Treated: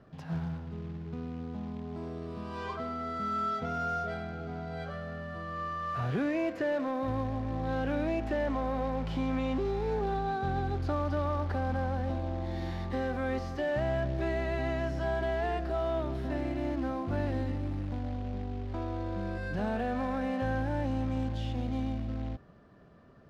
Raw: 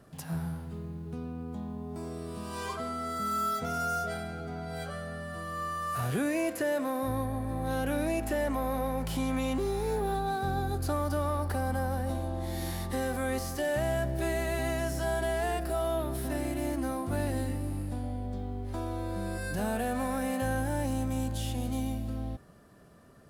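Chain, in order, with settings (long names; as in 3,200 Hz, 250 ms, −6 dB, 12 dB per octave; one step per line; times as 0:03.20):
floating-point word with a short mantissa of 2 bits
high-frequency loss of the air 220 metres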